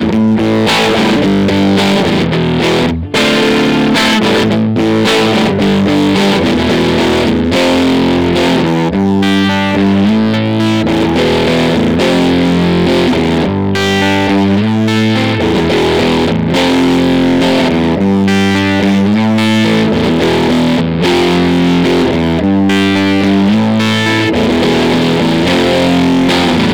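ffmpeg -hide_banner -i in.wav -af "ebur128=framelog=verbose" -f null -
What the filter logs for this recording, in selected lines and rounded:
Integrated loudness:
  I:         -10.3 LUFS
  Threshold: -20.3 LUFS
Loudness range:
  LRA:         0.7 LU
  Threshold: -30.4 LUFS
  LRA low:   -10.7 LUFS
  LRA high:  -10.1 LUFS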